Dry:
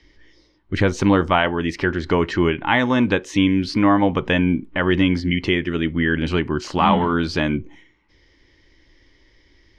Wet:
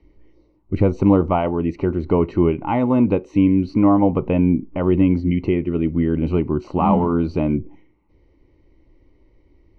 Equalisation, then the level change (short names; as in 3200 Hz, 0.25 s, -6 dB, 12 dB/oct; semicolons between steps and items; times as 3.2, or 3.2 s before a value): running mean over 26 samples; +2.5 dB